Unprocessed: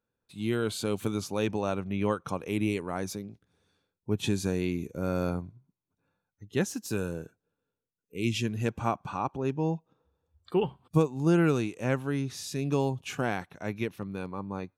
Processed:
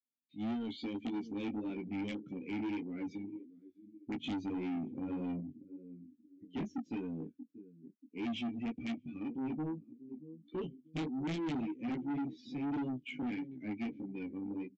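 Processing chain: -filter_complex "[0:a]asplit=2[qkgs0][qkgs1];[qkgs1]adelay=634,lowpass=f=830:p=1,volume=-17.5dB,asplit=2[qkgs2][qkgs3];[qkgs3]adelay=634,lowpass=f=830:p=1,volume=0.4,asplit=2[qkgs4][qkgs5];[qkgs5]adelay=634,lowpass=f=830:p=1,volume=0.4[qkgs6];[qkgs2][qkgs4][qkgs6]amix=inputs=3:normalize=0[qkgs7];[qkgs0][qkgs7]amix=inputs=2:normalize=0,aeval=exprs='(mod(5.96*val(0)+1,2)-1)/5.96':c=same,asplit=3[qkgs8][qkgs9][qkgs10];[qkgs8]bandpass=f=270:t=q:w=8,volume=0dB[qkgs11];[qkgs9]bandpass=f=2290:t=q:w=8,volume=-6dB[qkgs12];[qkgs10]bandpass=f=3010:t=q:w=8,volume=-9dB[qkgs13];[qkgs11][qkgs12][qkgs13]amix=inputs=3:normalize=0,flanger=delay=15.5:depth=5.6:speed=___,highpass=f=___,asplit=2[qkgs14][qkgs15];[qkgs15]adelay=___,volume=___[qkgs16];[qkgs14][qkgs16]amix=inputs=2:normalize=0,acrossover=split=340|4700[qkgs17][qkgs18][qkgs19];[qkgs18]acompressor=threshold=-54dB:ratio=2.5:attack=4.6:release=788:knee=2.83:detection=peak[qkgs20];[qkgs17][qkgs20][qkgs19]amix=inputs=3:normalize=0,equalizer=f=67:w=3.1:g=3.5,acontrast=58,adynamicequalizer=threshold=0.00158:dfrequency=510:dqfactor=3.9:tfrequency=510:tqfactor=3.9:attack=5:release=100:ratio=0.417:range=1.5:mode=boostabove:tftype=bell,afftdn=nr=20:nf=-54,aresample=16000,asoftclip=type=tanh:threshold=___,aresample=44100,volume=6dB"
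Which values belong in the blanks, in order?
1.7, 45, 13, -6dB, -39.5dB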